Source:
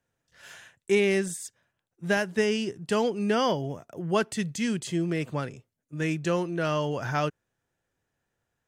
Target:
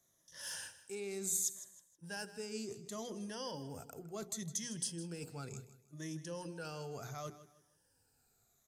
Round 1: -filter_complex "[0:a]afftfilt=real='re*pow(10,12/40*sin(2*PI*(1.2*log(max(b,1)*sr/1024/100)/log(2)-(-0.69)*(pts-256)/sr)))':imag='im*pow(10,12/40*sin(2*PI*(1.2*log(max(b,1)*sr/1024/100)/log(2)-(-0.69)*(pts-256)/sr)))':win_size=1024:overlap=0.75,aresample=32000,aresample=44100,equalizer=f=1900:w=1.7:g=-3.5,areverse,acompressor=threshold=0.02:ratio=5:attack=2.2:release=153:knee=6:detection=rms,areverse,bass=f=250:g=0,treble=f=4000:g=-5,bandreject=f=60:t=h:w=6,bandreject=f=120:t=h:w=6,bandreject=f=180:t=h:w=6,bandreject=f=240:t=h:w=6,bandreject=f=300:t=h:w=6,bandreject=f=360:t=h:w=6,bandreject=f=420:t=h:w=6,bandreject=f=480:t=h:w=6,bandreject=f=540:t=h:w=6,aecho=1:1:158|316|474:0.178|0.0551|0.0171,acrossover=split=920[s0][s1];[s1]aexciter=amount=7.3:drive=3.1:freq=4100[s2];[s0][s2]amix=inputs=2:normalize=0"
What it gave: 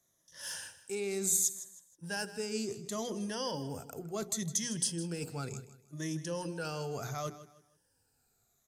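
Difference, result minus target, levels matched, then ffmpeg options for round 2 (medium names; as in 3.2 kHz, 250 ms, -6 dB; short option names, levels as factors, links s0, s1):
compression: peak gain reduction -7 dB
-filter_complex "[0:a]afftfilt=real='re*pow(10,12/40*sin(2*PI*(1.2*log(max(b,1)*sr/1024/100)/log(2)-(-0.69)*(pts-256)/sr)))':imag='im*pow(10,12/40*sin(2*PI*(1.2*log(max(b,1)*sr/1024/100)/log(2)-(-0.69)*(pts-256)/sr)))':win_size=1024:overlap=0.75,aresample=32000,aresample=44100,equalizer=f=1900:w=1.7:g=-3.5,areverse,acompressor=threshold=0.0075:ratio=5:attack=2.2:release=153:knee=6:detection=rms,areverse,bass=f=250:g=0,treble=f=4000:g=-5,bandreject=f=60:t=h:w=6,bandreject=f=120:t=h:w=6,bandreject=f=180:t=h:w=6,bandreject=f=240:t=h:w=6,bandreject=f=300:t=h:w=6,bandreject=f=360:t=h:w=6,bandreject=f=420:t=h:w=6,bandreject=f=480:t=h:w=6,bandreject=f=540:t=h:w=6,aecho=1:1:158|316|474:0.178|0.0551|0.0171,acrossover=split=920[s0][s1];[s1]aexciter=amount=7.3:drive=3.1:freq=4100[s2];[s0][s2]amix=inputs=2:normalize=0"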